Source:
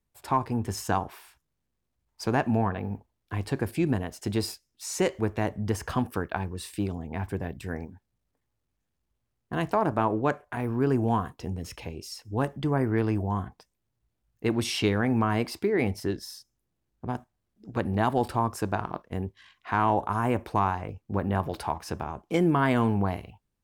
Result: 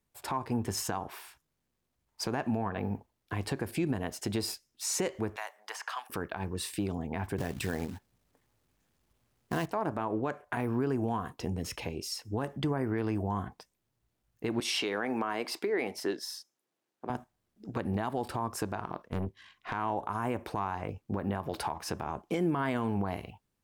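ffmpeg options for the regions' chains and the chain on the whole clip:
-filter_complex "[0:a]asettb=1/sr,asplit=3[s0][s1][s2];[s0]atrim=end=5.364[s3];[s1]atrim=start=5.36:end=6.1,asetpts=PTS-STARTPTS,afade=t=in:d=0.004:c=qsin,afade=t=out:st=0.736:d=0.004:c=qsin,highpass=f=810:w=0.5412,highpass=f=810:w=1.3066,acrossover=split=1700|6100[s4][s5][s6];[s4]acompressor=threshold=0.00891:ratio=4[s7];[s5]acompressor=threshold=0.00562:ratio=4[s8];[s6]acompressor=threshold=0.00126:ratio=4[s9];[s7][s8][s9]amix=inputs=3:normalize=0[s10];[s2]atrim=start=6.096[s11];[s3][s10]acrossfade=d=0.004:c1=hsin:c2=qsin[s12];[s12][s11]acrossfade=d=0.004:c1=qsin:c2=hsin,asettb=1/sr,asplit=3[s13][s14][s15];[s13]atrim=end=7.384[s16];[s14]atrim=start=7.38:end=9.66,asetpts=PTS-STARTPTS,afade=t=in:d=0.004:c=qsin,afade=t=out:st=2.276:d=0.004:c=qsin,acontrast=90,acrusher=bits=4:mode=log:mix=0:aa=0.000001[s17];[s15]atrim=start=9.656[s18];[s16][s17]acrossfade=d=0.004:c1=hsin:c2=qsin[s19];[s19][s18]acrossfade=d=0.004:c1=qsin:c2=hsin,asettb=1/sr,asplit=3[s20][s21][s22];[s20]atrim=end=14.604[s23];[s21]atrim=start=14.6:end=17.1,asetpts=PTS-STARTPTS,afade=t=in:d=0.004:c=qsin,afade=t=out:st=2.496:d=0.004:c=qsin,highpass=360,highshelf=f=9000:g=-5[s24];[s22]atrim=start=17.096[s25];[s23][s24]acrossfade=d=0.004:c1=hsin:c2=qsin[s26];[s26][s25]acrossfade=d=0.004:c1=qsin:c2=hsin,asettb=1/sr,asplit=3[s27][s28][s29];[s27]atrim=end=19.074[s30];[s28]atrim=start=19.07:end=19.73,asetpts=PTS-STARTPTS,afade=t=in:d=0.004:c=qsin,afade=t=out:st=0.656:d=0.004:c=qsin,lowshelf=f=440:g=5,aeval=exprs='(tanh(22.4*val(0)+0.7)-tanh(0.7))/22.4':c=same[s31];[s29]atrim=start=19.726[s32];[s30][s31]acrossfade=d=0.004:c1=hsin:c2=qsin[s33];[s33][s32]acrossfade=d=0.004:c1=qsin:c2=hsin,lowshelf=f=94:g=-9,acompressor=threshold=0.0316:ratio=3,alimiter=limit=0.0631:level=0:latency=1:release=93,volume=1.41"

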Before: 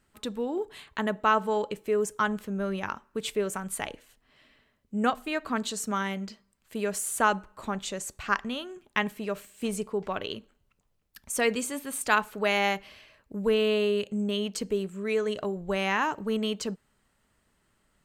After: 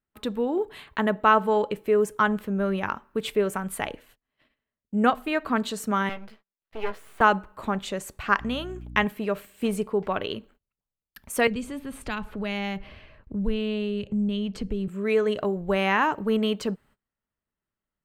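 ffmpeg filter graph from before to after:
-filter_complex "[0:a]asettb=1/sr,asplit=3[s0][s1][s2];[s0]atrim=end=6.094[s3];[s1]atrim=start=6.09:end=7.21,asetpts=PTS-STARTPTS,afade=t=in:d=0.004:c=qsin,afade=t=out:st=1.116:d=0.004:c=qsin,acrossover=split=260 4000:gain=0.178 1 0.0708[s4][s5][s6];[s4][s5][s6]amix=inputs=3:normalize=0,aeval=exprs='max(val(0),0)':c=same,asplit=2[s7][s8];[s8]adelay=14,volume=0.422[s9];[s7][s9]amix=inputs=2:normalize=0,atrim=end_sample=49392[s10];[s2]atrim=start=7.206[s11];[s3][s10]acrossfade=d=0.004:c1=hsin:c2=qsin[s12];[s12][s11]acrossfade=d=0.004:c1=qsin:c2=hsin,asettb=1/sr,asplit=3[s13][s14][s15];[s13]atrim=end=8.404[s16];[s14]atrim=start=8.4:end=9.05,asetpts=PTS-STARTPTS,afade=t=in:d=0.004:c=qsin,afade=t=out:st=0.646:d=0.004:c=qsin,agate=range=0.0224:threshold=0.001:ratio=3:release=100:detection=peak,equalizer=f=6700:w=1.4:g=5.5,aeval=exprs='val(0)+0.00708*(sin(2*PI*60*n/s)+sin(2*PI*2*60*n/s)/2+sin(2*PI*3*60*n/s)/3+sin(2*PI*4*60*n/s)/4+sin(2*PI*5*60*n/s)/5)':c=same[s17];[s15]atrim=start=9.046[s18];[s16][s17]acrossfade=d=0.004:c1=hsin:c2=qsin[s19];[s19][s18]acrossfade=d=0.004:c1=qsin:c2=hsin,asettb=1/sr,asplit=3[s20][s21][s22];[s20]atrim=end=11.474[s23];[s21]atrim=start=11.47:end=14.88,asetpts=PTS-STARTPTS,afade=t=in:d=0.004:c=qsin,afade=t=out:st=3.406:d=0.004:c=qsin,aemphasis=mode=reproduction:type=bsi,acrossover=split=170|3000[s24][s25][s26];[s25]acompressor=threshold=0.00794:ratio=2.5:attack=3.2:release=140:knee=2.83:detection=peak[s27];[s24][s27][s26]amix=inputs=3:normalize=0[s28];[s22]atrim=start=14.876[s29];[s23][s28]acrossfade=d=0.004:c1=hsin:c2=qsin[s30];[s30][s29]acrossfade=d=0.004:c1=qsin:c2=hsin,agate=range=0.0631:threshold=0.00126:ratio=16:detection=peak,equalizer=f=6800:t=o:w=1.4:g=-10.5,volume=1.78"

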